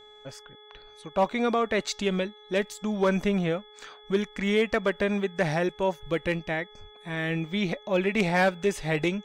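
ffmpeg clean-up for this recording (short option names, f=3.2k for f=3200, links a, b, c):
-af "bandreject=f=421.9:t=h:w=4,bandreject=f=843.8:t=h:w=4,bandreject=f=1.2657k:t=h:w=4,bandreject=f=1.6876k:t=h:w=4,bandreject=f=2.1095k:t=h:w=4,bandreject=f=3.4k:w=30"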